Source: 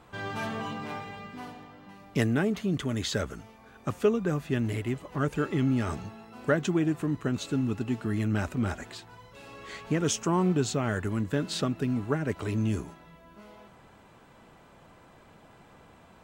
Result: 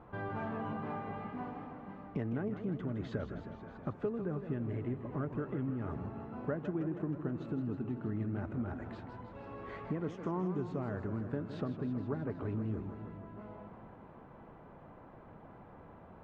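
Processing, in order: LPF 1200 Hz 12 dB/oct; compressor 3:1, threshold -38 dBFS, peak gain reduction 14.5 dB; warbling echo 0.159 s, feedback 73%, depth 157 cents, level -10 dB; gain +1 dB

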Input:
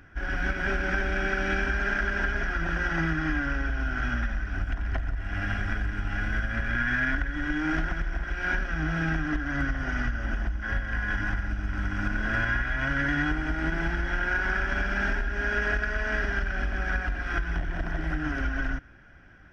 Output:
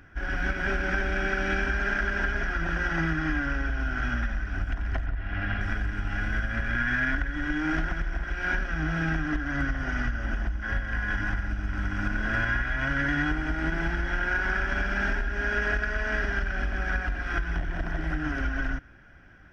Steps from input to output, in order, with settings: 5.06–5.61 LPF 4300 Hz 24 dB/oct

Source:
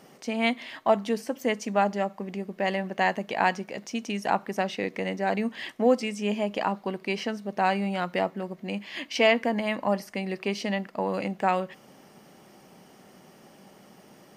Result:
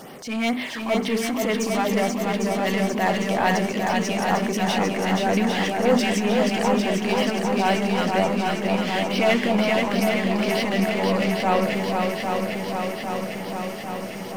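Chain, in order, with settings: notches 50/100/150/200/250/300/350/400/450 Hz; power-law curve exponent 0.7; transient shaper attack -7 dB, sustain +3 dB; LFO notch sine 2.1 Hz 500–7200 Hz; swung echo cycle 0.802 s, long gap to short 1.5:1, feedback 68%, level -4 dB

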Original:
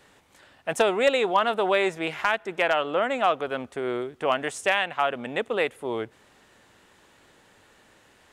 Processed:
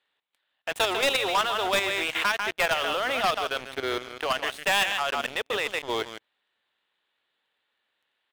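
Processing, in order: octaver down 2 oct, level -3 dB; HPF 1100 Hz 6 dB/oct; resonant high shelf 4700 Hz -9 dB, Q 3; echo 0.147 s -10 dB; level quantiser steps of 12 dB; sample leveller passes 5; 2.27–4.67 notch 7400 Hz, Q 11; gain -8 dB

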